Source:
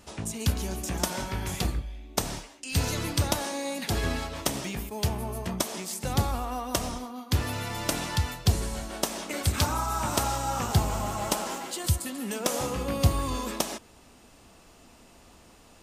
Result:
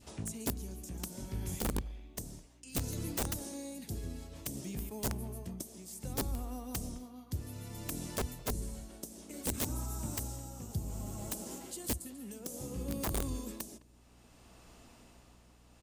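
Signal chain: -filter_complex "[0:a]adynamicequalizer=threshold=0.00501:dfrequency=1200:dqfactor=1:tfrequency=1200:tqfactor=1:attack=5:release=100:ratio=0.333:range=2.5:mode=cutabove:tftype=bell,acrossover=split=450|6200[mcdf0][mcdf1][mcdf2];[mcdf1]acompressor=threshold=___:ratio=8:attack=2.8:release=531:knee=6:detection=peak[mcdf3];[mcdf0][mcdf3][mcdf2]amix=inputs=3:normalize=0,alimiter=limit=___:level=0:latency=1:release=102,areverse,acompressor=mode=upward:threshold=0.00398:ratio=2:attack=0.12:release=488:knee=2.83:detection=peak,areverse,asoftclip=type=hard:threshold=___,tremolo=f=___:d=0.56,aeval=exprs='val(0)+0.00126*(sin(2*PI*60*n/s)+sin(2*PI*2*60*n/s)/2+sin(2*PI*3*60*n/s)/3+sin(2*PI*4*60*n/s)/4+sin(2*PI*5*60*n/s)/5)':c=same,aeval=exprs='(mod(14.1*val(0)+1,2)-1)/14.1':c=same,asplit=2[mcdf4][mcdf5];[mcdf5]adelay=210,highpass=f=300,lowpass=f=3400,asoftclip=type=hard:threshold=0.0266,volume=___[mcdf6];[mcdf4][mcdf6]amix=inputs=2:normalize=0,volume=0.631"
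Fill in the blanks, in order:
0.00562, 0.188, 0.141, 0.61, 0.1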